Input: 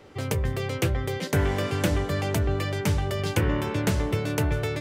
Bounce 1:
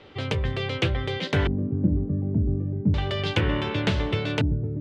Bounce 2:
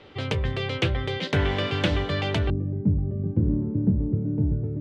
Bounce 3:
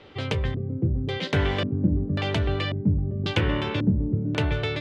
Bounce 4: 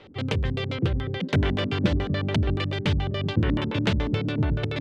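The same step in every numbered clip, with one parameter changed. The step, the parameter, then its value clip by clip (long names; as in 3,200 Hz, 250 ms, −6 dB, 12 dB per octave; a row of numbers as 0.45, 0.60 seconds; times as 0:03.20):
auto-filter low-pass, speed: 0.34, 0.2, 0.92, 7 Hertz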